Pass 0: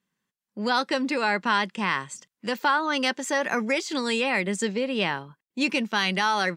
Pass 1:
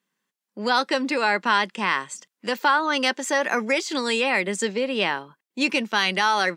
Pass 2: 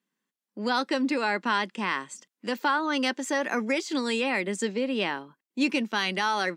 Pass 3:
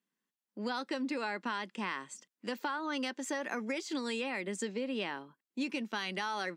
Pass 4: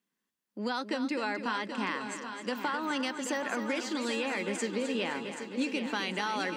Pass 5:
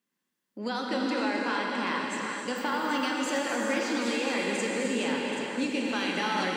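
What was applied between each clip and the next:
HPF 250 Hz 12 dB/oct; gain +3 dB
bell 270 Hz +7 dB 0.94 oct; gain -6 dB
compressor, threshold -26 dBFS, peak gain reduction 7 dB; gain -5.5 dB
multi-head echo 0.26 s, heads first and third, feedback 58%, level -10 dB; gain +3 dB
non-linear reverb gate 0.49 s flat, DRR -1.5 dB

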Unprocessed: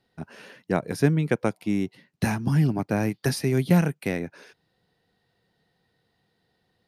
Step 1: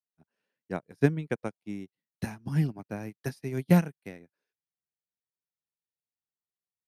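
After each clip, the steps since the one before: upward expander 2.5:1, over -40 dBFS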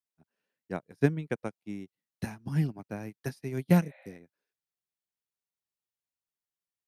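spectral repair 3.85–4.13, 530–4400 Hz after; gain -1.5 dB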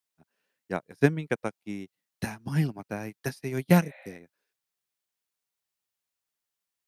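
low shelf 440 Hz -6 dB; gain +7 dB

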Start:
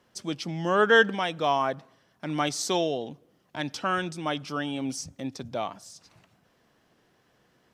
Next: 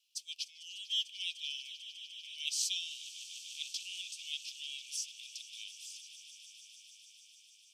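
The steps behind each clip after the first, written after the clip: steep high-pass 2500 Hz 96 dB/oct; swelling echo 0.149 s, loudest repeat 5, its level -17 dB; gain -2 dB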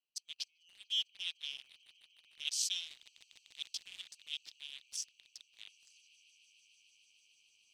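Wiener smoothing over 25 samples; reverse; upward compressor, threshold -57 dBFS; reverse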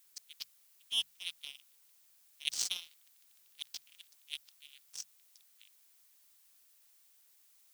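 power-law curve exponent 2; notches 50/100/150/200 Hz; added noise blue -74 dBFS; gain +8 dB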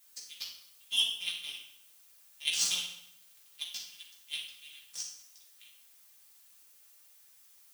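reverb RT60 0.80 s, pre-delay 3 ms, DRR -5.5 dB

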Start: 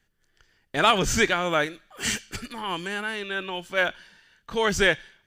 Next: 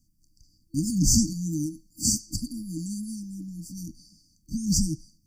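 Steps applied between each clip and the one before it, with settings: FFT band-reject 330–4500 Hz; gain +6.5 dB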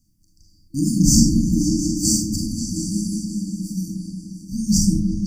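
repeats that get brighter 0.178 s, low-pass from 400 Hz, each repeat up 2 oct, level -3 dB; reverb RT60 0.35 s, pre-delay 36 ms, DRR 1 dB; gain +2.5 dB

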